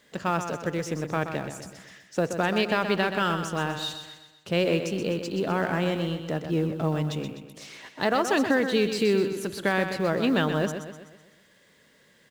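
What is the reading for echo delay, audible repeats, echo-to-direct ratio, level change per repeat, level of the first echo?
126 ms, 5, −7.5 dB, −6.0 dB, −8.5 dB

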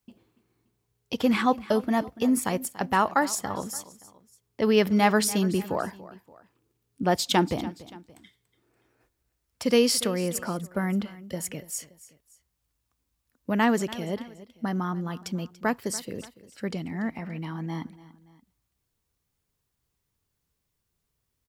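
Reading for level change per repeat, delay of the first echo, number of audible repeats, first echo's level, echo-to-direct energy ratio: −6.5 dB, 287 ms, 2, −18.0 dB, −17.0 dB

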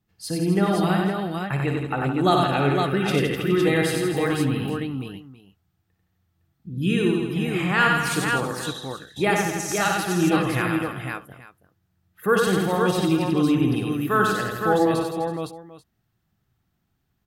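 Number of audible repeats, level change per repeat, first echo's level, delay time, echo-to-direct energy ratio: 10, repeats not evenly spaced, −7.5 dB, 57 ms, 1.0 dB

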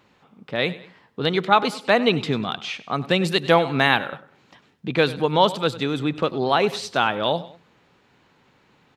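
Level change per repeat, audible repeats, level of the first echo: −7.5 dB, 2, −17.5 dB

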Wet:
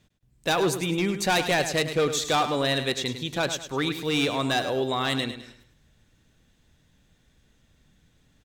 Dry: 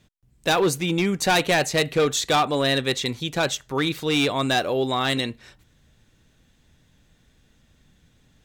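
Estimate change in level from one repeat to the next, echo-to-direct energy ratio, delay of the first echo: −9.0 dB, −9.5 dB, 104 ms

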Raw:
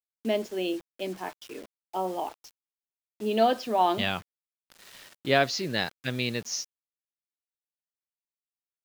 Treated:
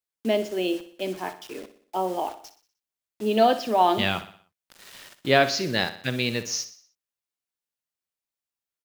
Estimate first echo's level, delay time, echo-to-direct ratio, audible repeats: −13.0 dB, 61 ms, −12.0 dB, 4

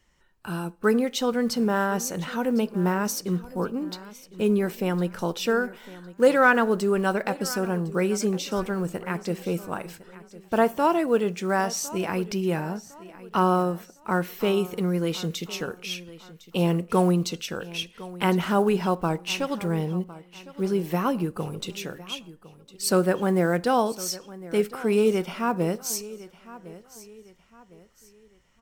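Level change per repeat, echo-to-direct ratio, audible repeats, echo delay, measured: −9.0 dB, −17.5 dB, 2, 1,057 ms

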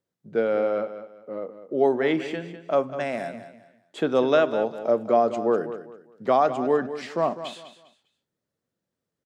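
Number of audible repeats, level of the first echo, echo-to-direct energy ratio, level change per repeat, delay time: 3, −12.0 dB, −11.5 dB, −11.0 dB, 200 ms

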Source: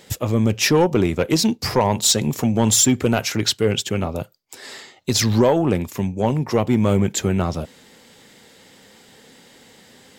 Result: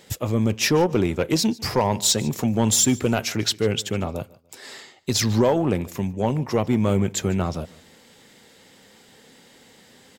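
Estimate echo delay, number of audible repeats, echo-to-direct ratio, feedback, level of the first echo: 148 ms, 2, −21.5 dB, 30%, −22.0 dB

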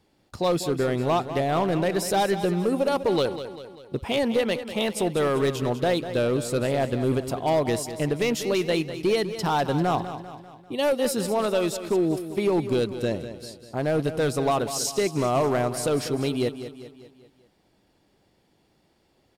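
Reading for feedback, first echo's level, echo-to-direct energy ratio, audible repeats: 50%, −11.5 dB, −10.5 dB, 4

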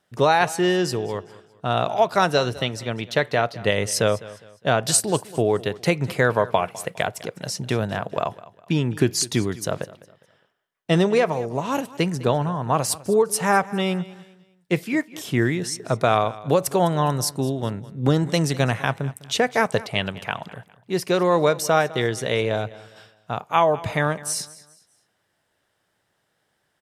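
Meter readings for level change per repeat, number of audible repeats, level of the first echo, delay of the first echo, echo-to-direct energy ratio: −9.0 dB, 2, −19.0 dB, 204 ms, −18.5 dB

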